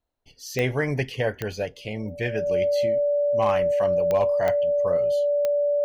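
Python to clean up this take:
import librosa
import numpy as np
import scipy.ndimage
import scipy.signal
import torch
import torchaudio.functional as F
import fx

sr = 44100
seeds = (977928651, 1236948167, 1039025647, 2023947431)

y = fx.fix_declip(x, sr, threshold_db=-13.5)
y = fx.fix_declick_ar(y, sr, threshold=10.0)
y = fx.notch(y, sr, hz=580.0, q=30.0)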